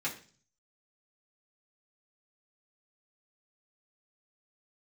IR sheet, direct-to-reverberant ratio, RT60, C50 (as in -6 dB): -6.0 dB, 0.40 s, 11.0 dB